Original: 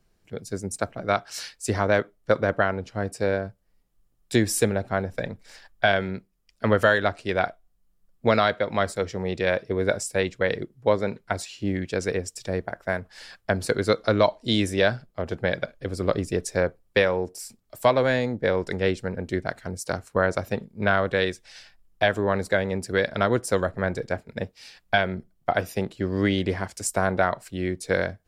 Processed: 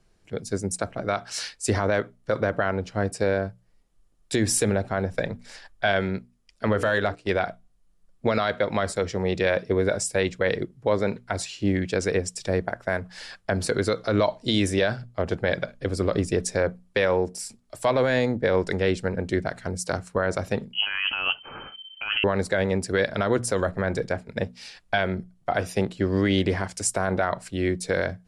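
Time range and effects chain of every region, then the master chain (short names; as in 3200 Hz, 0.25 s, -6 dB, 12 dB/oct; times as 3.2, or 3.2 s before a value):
6.67–7.3 notches 60/120/180/240/300/360/420/480 Hz + gate -36 dBFS, range -12 dB + de-esser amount 85%
20.73–22.24 negative-ratio compressor -30 dBFS + inverted band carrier 3100 Hz
whole clip: steep low-pass 11000 Hz 36 dB/oct; notches 60/120/180/240 Hz; limiter -15.5 dBFS; gain +3.5 dB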